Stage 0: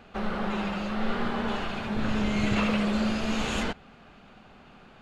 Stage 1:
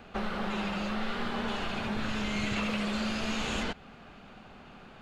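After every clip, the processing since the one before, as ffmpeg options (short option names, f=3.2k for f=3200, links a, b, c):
-filter_complex "[0:a]acrossover=split=910|2400|7400[a][b][c][d];[a]acompressor=threshold=-33dB:ratio=4[e];[b]acompressor=threshold=-41dB:ratio=4[f];[c]acompressor=threshold=-39dB:ratio=4[g];[d]acompressor=threshold=-58dB:ratio=4[h];[e][f][g][h]amix=inputs=4:normalize=0,volume=1.5dB"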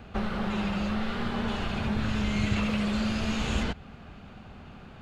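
-af "equalizer=f=74:t=o:w=2.3:g=13"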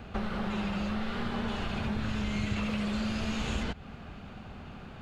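-af "acompressor=threshold=-34dB:ratio=2,volume=1.5dB"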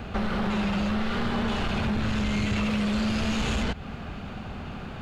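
-af "asoftclip=type=tanh:threshold=-29dB,volume=8.5dB"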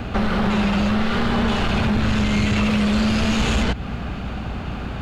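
-af "aeval=exprs='val(0)+0.0126*(sin(2*PI*60*n/s)+sin(2*PI*2*60*n/s)/2+sin(2*PI*3*60*n/s)/3+sin(2*PI*4*60*n/s)/4+sin(2*PI*5*60*n/s)/5)':c=same,volume=7dB"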